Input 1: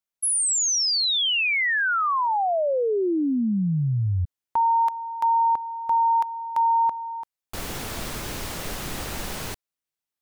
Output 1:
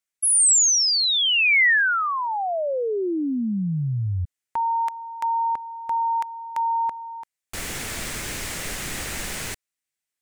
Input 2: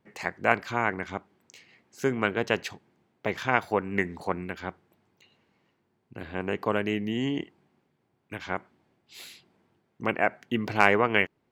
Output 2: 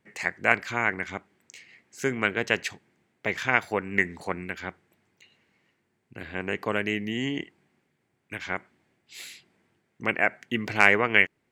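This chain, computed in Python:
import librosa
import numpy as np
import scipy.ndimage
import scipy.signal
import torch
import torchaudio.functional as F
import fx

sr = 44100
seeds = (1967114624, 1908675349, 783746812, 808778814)

y = fx.graphic_eq(x, sr, hz=(1000, 2000, 8000), db=(-3, 8, 8))
y = y * 10.0 ** (-1.5 / 20.0)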